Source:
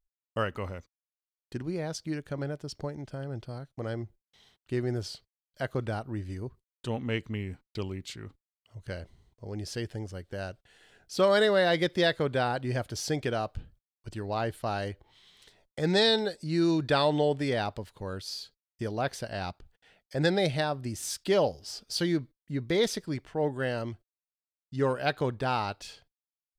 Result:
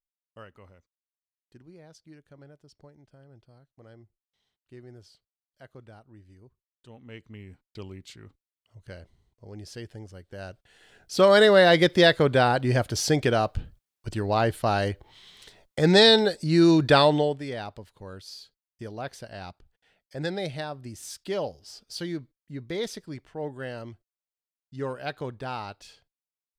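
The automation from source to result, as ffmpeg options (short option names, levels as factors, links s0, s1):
-af "volume=2.37,afade=t=in:st=6.96:d=0.95:silence=0.266073,afade=t=in:st=10.29:d=1.29:silence=0.237137,afade=t=out:st=16.98:d=0.41:silence=0.237137"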